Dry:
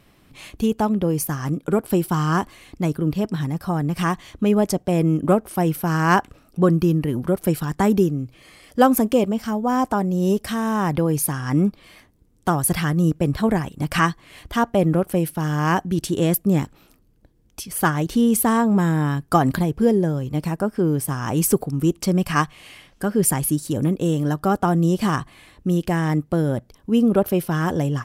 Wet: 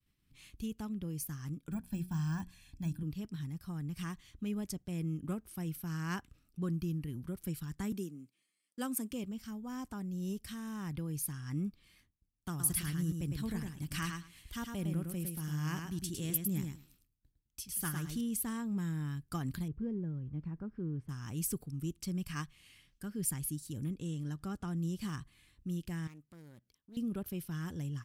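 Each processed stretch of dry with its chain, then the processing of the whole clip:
1.71–3.03 s: de-esser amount 90% + hum notches 60/120/180/240/300/360/420 Hz + comb 1.2 ms, depth 91%
7.92–9.11 s: gate -39 dBFS, range -10 dB + high-pass 200 Hz 24 dB/octave + peaking EQ 8.6 kHz +9.5 dB 0.31 oct
12.49–18.21 s: treble shelf 5 kHz +6 dB + feedback delay 106 ms, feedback 16%, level -5 dB
19.68–21.09 s: companding laws mixed up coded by mu + low-pass 1.2 kHz + peaking EQ 690 Hz -4 dB 0.34 oct
23.90–24.77 s: low-pass 9.8 kHz + upward compressor, threshold -21 dBFS
26.07–26.97 s: high-pass 320 Hz 6 dB/octave + compression 1.5:1, threshold -45 dBFS + loudspeaker Doppler distortion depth 0.32 ms
whole clip: expander -49 dBFS; amplifier tone stack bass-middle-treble 6-0-2

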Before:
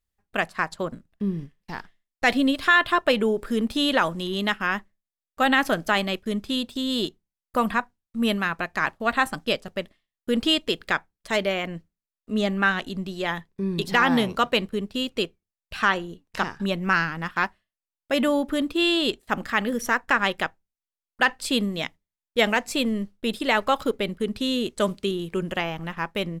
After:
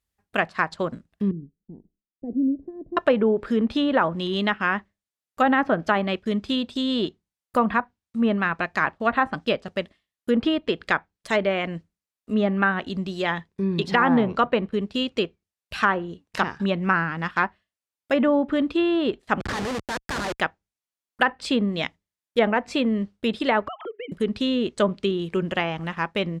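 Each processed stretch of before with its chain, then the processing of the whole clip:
1.31–2.97 s: inverse Chebyshev low-pass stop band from 1.2 kHz, stop band 60 dB + peaking EQ 91 Hz -12 dB 1.7 oct
19.40–20.40 s: de-esser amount 95% + high-pass 360 Hz + Schmitt trigger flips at -35 dBFS
23.68–24.12 s: formants replaced by sine waves + compression 12:1, threshold -33 dBFS
whole clip: low-pass that closes with the level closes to 1.4 kHz, closed at -18 dBFS; high-pass 46 Hz; trim +2.5 dB

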